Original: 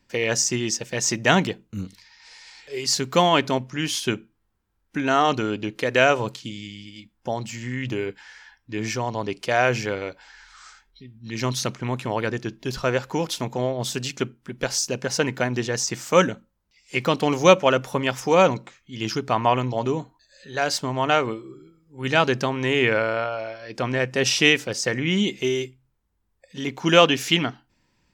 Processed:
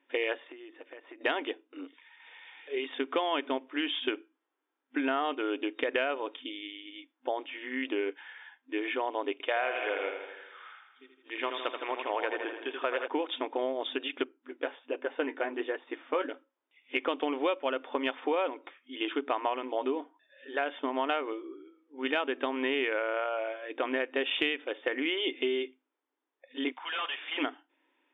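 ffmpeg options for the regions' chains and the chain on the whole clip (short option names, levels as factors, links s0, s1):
-filter_complex "[0:a]asettb=1/sr,asplit=3[s0][s1][s2];[s0]atrim=end=0.474[s3];[s1]atrim=start=0.47:end=1.21,asetpts=PTS-STARTPTS,afade=t=in:d=0.004:c=qsin,afade=t=out:st=0.736:d=0.004:c=qsin,highpass=130,lowpass=2300,acompressor=threshold=0.01:ratio=10:attack=3.2:release=140:knee=1:detection=peak,bandreject=f=860:w=20[s4];[s2]atrim=start=1.206[s5];[s3][s4]acrossfade=d=0.004:c1=hsin:c2=qsin[s6];[s6][s5]acrossfade=d=0.004:c1=qsin:c2=hsin,asettb=1/sr,asplit=3[s7][s8][s9];[s7]atrim=end=9.324[s10];[s8]atrim=start=9.32:end=13.08,asetpts=PTS-STARTPTS,afade=t=in:d=0.004:c=qsin,afade=t=out:st=3.756:d=0.004:c=qsin,highpass=450,lowpass=5400,aecho=1:1:80|160|240|320|400|480|560|640:0.447|0.264|0.155|0.0917|0.0541|0.0319|0.0188|0.0111,atrim=end_sample=165816[s11];[s9]atrim=start=13.076[s12];[s10][s11]acrossfade=d=0.004:c1=hsin:c2=qsin[s13];[s13][s12]acrossfade=d=0.004:c1=qsin:c2=hsin,asettb=1/sr,asplit=3[s14][s15][s16];[s14]atrim=end=14.244[s17];[s15]atrim=start=14.24:end=16.29,asetpts=PTS-STARTPTS,afade=t=in:d=0.004:c=qsin,afade=t=out:st=2.046:d=0.004:c=qsin,aemphasis=mode=reproduction:type=75fm,flanger=delay=5.1:depth=9:regen=-37:speed=1.3:shape=sinusoidal[s18];[s16]atrim=start=16.286[s19];[s17][s18]acrossfade=d=0.004:c1=hsin:c2=qsin[s20];[s20][s19]acrossfade=d=0.004:c1=qsin:c2=hsin,asettb=1/sr,asplit=3[s21][s22][s23];[s21]atrim=end=26.724[s24];[s22]atrim=start=26.72:end=27.38,asetpts=PTS-STARTPTS,afade=t=in:d=0.004:c=qsin,afade=t=out:st=0.656:d=0.004:c=qsin,highpass=f=830:w=0.5412,highpass=f=830:w=1.3066,aeval=exprs='(tanh(28.2*val(0)+0.4)-tanh(0.4))/28.2':c=same[s25];[s23]atrim=start=27.376[s26];[s24][s25]acrossfade=d=0.004:c1=hsin:c2=qsin[s27];[s27][s26]acrossfade=d=0.004:c1=qsin:c2=hsin,afftfilt=real='re*between(b*sr/4096,250,3700)':imag='im*between(b*sr/4096,250,3700)':win_size=4096:overlap=0.75,acompressor=threshold=0.0631:ratio=8,volume=0.794"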